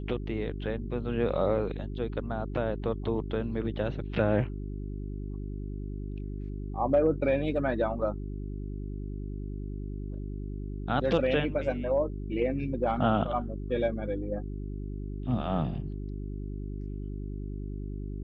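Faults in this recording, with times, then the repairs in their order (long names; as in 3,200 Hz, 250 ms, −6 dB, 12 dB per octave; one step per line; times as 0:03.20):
mains hum 50 Hz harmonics 8 −36 dBFS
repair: hum removal 50 Hz, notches 8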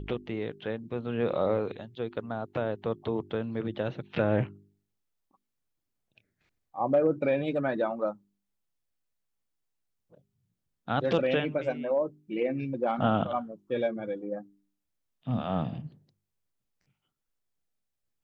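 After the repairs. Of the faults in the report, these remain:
none of them is left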